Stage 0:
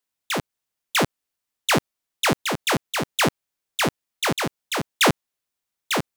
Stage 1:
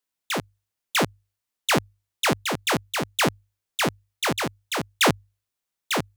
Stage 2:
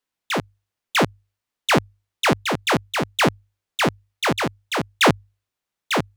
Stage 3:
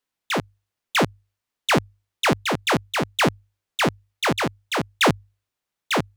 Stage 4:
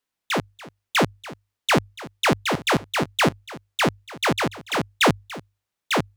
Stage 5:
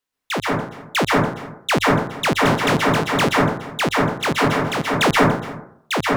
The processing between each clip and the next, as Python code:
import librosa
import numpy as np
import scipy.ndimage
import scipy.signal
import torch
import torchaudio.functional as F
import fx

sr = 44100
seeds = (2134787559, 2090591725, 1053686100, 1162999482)

y1 = fx.hum_notches(x, sr, base_hz=50, count=2)
y1 = F.gain(torch.from_numpy(y1), -1.5).numpy()
y2 = fx.high_shelf(y1, sr, hz=5500.0, db=-9.5)
y2 = F.gain(torch.from_numpy(y2), 4.5).numpy()
y3 = 10.0 ** (-10.5 / 20.0) * np.tanh(y2 / 10.0 ** (-10.5 / 20.0))
y4 = y3 + 10.0 ** (-18.5 / 20.0) * np.pad(y3, (int(288 * sr / 1000.0), 0))[:len(y3)]
y5 = fx.rev_plate(y4, sr, seeds[0], rt60_s=0.66, hf_ratio=0.3, predelay_ms=115, drr_db=-3.5)